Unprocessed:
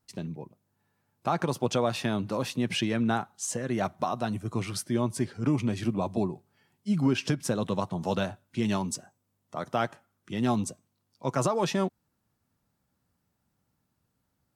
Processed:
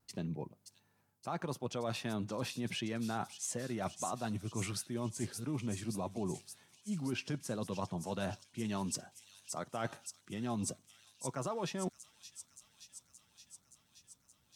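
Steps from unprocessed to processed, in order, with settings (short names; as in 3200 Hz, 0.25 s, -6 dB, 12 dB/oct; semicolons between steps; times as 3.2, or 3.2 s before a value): reverse; compressor 6:1, threshold -35 dBFS, peak gain reduction 14.5 dB; reverse; vibrato 1.5 Hz 29 cents; thin delay 0.573 s, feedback 74%, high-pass 5300 Hz, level -3.5 dB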